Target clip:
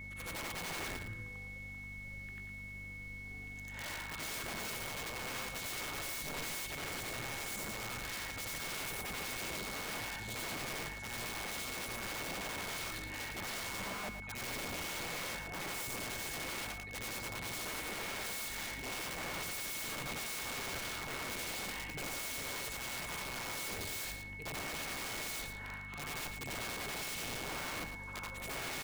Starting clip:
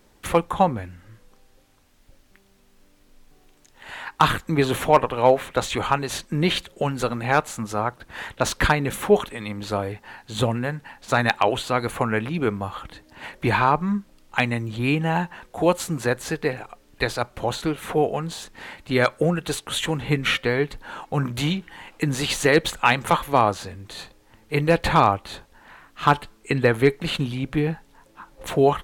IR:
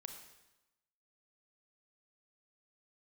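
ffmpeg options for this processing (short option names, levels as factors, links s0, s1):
-filter_complex "[0:a]afftfilt=real='re':imag='-im':win_size=8192:overlap=0.75,areverse,acompressor=threshold=0.0141:ratio=10,areverse,aeval=exprs='val(0)+0.00251*(sin(2*PI*50*n/s)+sin(2*PI*2*50*n/s)/2+sin(2*PI*3*50*n/s)/3+sin(2*PI*4*50*n/s)/4+sin(2*PI*5*50*n/s)/5)':c=same,aeval=exprs='(mod(106*val(0)+1,2)-1)/106':c=same,aeval=exprs='val(0)+0.00282*sin(2*PI*2200*n/s)':c=same,asplit=2[s0][s1];[s1]aecho=0:1:111:0.376[s2];[s0][s2]amix=inputs=2:normalize=0,volume=1.5"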